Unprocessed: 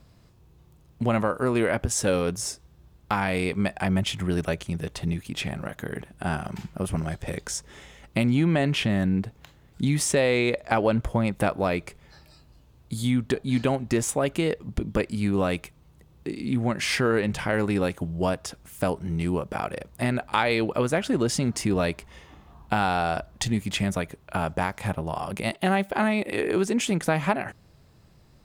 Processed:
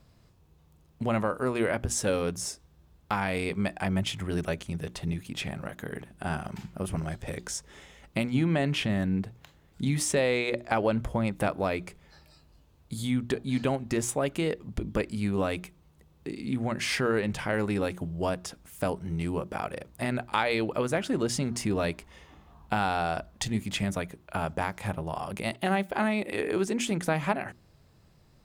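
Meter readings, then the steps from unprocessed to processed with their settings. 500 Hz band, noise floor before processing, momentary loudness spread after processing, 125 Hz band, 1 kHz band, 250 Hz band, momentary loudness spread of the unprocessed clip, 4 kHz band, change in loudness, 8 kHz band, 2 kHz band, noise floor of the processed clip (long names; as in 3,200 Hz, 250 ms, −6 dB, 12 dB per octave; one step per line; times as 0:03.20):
−3.5 dB, −56 dBFS, 9 LU, −4.5 dB, −3.5 dB, −4.5 dB, 9 LU, −3.5 dB, −4.0 dB, −3.5 dB, −3.5 dB, −61 dBFS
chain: mains-hum notches 60/120/180/240/300/360 Hz
level −3.5 dB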